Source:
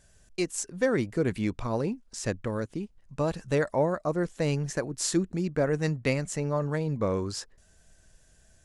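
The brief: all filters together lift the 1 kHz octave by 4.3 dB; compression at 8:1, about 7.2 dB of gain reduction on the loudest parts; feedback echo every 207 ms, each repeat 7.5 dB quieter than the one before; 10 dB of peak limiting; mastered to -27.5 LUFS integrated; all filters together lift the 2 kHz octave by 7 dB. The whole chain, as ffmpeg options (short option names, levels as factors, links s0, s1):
-af "equalizer=f=1000:t=o:g=3.5,equalizer=f=2000:t=o:g=7.5,acompressor=threshold=0.0501:ratio=8,alimiter=level_in=1.19:limit=0.0631:level=0:latency=1,volume=0.841,aecho=1:1:207|414|621|828|1035:0.422|0.177|0.0744|0.0312|0.0131,volume=2.37"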